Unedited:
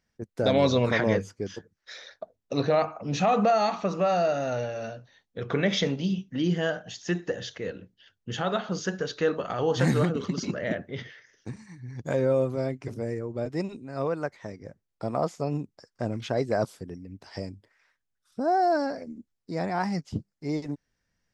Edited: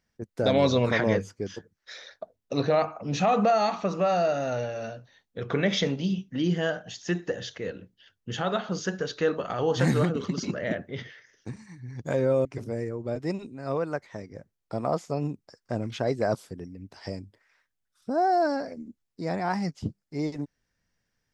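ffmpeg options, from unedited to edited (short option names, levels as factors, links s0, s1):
-filter_complex "[0:a]asplit=2[s0][s1];[s0]atrim=end=12.452[s2];[s1]atrim=start=12.748[s3];[s2][s3]acrossfade=d=0.004:c1=hsin:c2=hsin"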